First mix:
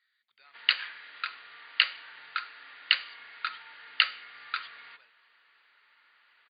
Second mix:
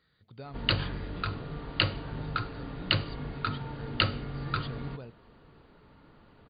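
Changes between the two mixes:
speech +6.5 dB; master: remove resonant high-pass 1900 Hz, resonance Q 2.2

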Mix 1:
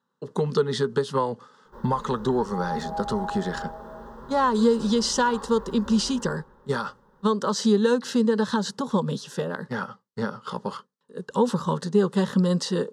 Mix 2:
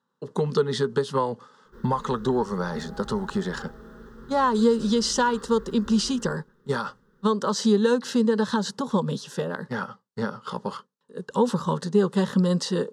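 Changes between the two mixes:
background: add band shelf 760 Hz -15.5 dB 1.1 oct; reverb: off

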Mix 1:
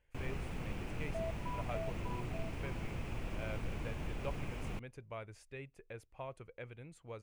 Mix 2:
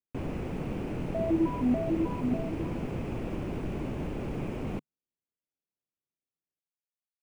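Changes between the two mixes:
speech: muted; second sound: remove brick-wall FIR high-pass 610 Hz; master: add bell 310 Hz +13.5 dB 2.9 oct

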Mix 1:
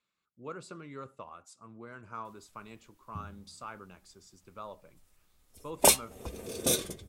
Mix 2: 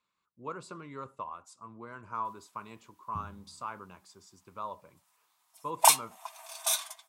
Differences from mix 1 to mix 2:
second sound: add brick-wall FIR high-pass 620 Hz; master: add bell 1000 Hz +11.5 dB 0.36 oct

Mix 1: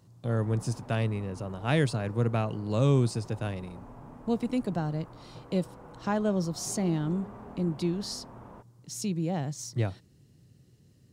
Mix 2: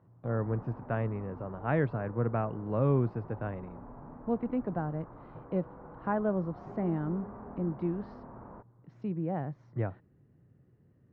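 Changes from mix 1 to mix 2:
speech: add low shelf 320 Hz -5 dB; master: add LPF 1700 Hz 24 dB/oct

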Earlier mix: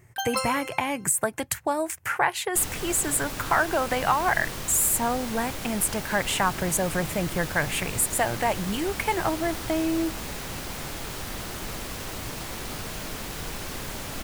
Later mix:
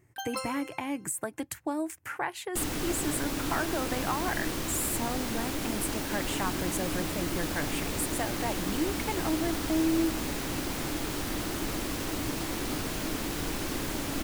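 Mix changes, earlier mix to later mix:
speech -10.0 dB; first sound -8.0 dB; master: add bell 300 Hz +11.5 dB 0.51 oct

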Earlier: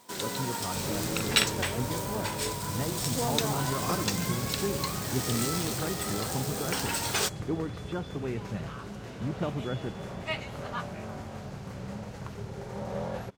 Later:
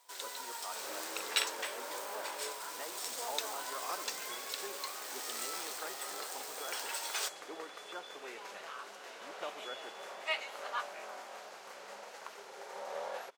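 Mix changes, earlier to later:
speech -3.5 dB; first sound -7.5 dB; master: add Bessel high-pass 720 Hz, order 4

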